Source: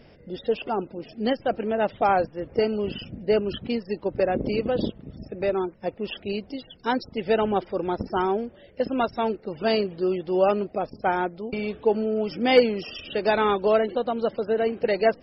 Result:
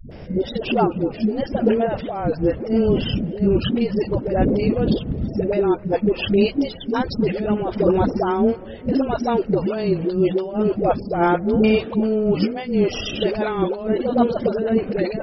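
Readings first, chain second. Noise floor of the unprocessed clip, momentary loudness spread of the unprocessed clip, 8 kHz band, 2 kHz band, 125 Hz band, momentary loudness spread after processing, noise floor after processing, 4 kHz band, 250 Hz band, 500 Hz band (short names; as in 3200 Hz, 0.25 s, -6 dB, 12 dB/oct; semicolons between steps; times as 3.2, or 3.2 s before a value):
-52 dBFS, 10 LU, n/a, 0.0 dB, +12.5 dB, 5 LU, -35 dBFS, +3.0 dB, +9.5 dB, +3.5 dB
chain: tilt -1.5 dB/oct; negative-ratio compressor -25 dBFS, ratio -0.5; vibrato 0.79 Hz 61 cents; dispersion highs, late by 0.108 s, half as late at 320 Hz; on a send: darkening echo 0.26 s, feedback 47%, low-pass 1700 Hz, level -22.5 dB; on the sum: gain +7.5 dB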